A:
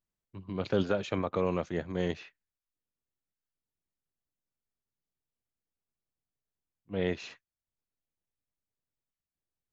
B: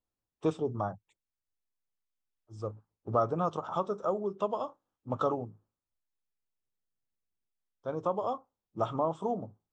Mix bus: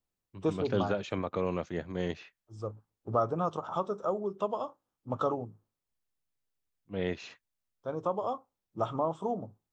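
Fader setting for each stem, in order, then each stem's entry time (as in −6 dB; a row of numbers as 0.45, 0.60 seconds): −2.0, −0.5 decibels; 0.00, 0.00 seconds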